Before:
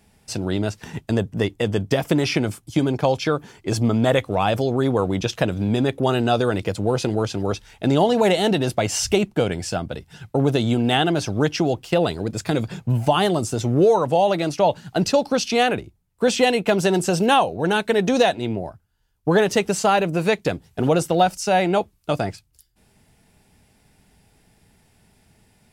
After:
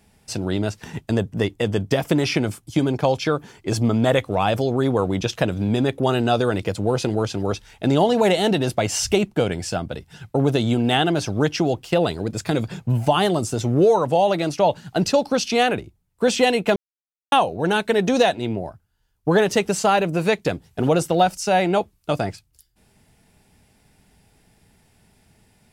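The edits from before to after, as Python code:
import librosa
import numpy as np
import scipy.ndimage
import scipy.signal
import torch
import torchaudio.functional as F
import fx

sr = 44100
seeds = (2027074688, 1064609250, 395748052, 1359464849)

y = fx.edit(x, sr, fx.silence(start_s=16.76, length_s=0.56), tone=tone)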